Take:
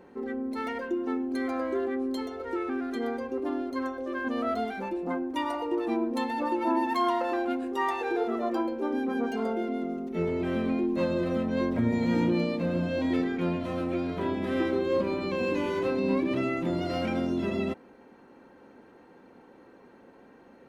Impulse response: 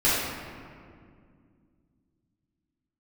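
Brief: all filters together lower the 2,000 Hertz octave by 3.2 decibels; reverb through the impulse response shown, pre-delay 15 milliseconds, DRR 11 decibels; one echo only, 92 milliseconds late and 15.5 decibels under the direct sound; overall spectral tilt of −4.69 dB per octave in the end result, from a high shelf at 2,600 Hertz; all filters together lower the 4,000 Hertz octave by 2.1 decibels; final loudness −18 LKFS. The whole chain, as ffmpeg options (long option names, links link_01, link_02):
-filter_complex "[0:a]equalizer=frequency=2000:width_type=o:gain=-5.5,highshelf=frequency=2600:gain=6,equalizer=frequency=4000:width_type=o:gain=-5.5,aecho=1:1:92:0.168,asplit=2[link_01][link_02];[1:a]atrim=start_sample=2205,adelay=15[link_03];[link_02][link_03]afir=irnorm=-1:irlink=0,volume=-27dB[link_04];[link_01][link_04]amix=inputs=2:normalize=0,volume=9.5dB"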